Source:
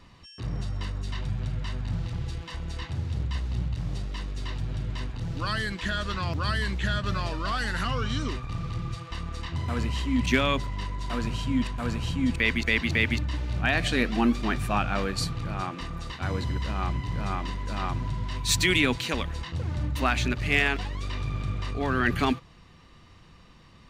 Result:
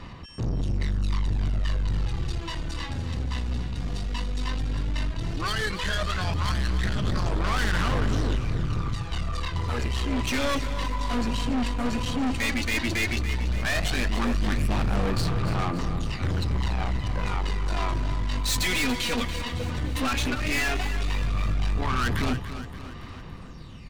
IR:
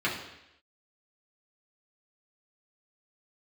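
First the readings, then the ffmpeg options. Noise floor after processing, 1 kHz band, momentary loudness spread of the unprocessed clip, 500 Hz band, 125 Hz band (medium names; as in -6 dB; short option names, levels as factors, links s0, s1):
-39 dBFS, +0.5 dB, 11 LU, 0.0 dB, +1.5 dB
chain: -af "aphaser=in_gain=1:out_gain=1:delay=4.2:decay=0.63:speed=0.13:type=sinusoidal,aeval=exprs='(tanh(28.2*val(0)+0.35)-tanh(0.35))/28.2':c=same,aecho=1:1:285|570|855|1140|1425|1710:0.266|0.146|0.0805|0.0443|0.0243|0.0134,volume=1.78"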